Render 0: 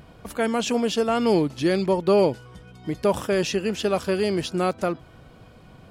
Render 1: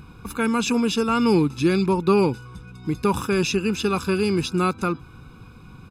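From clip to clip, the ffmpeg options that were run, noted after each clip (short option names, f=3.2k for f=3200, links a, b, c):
-af "aecho=1:1:0.8:0.94"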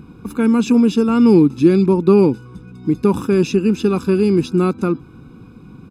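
-af "equalizer=f=270:w=0.63:g=14,volume=-4dB"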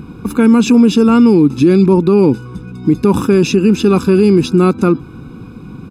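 -af "alimiter=level_in=9.5dB:limit=-1dB:release=50:level=0:latency=1,volume=-1dB"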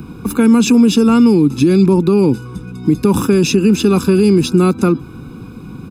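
-filter_complex "[0:a]acrossover=split=240|3000[a][b][c];[b]acompressor=threshold=-12dB:ratio=6[d];[a][d][c]amix=inputs=3:normalize=0,acrossover=split=350[e][f];[f]crystalizer=i=1:c=0[g];[e][g]amix=inputs=2:normalize=0"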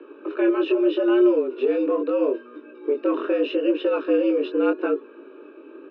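-af "aeval=exprs='0.891*(cos(1*acos(clip(val(0)/0.891,-1,1)))-cos(1*PI/2))+0.0126*(cos(6*acos(clip(val(0)/0.891,-1,1)))-cos(6*PI/2))':c=same,flanger=delay=17:depth=7.2:speed=0.79,highpass=f=190:t=q:w=0.5412,highpass=f=190:t=q:w=1.307,lowpass=f=3k:t=q:w=0.5176,lowpass=f=3k:t=q:w=0.7071,lowpass=f=3k:t=q:w=1.932,afreqshift=120,volume=-6dB"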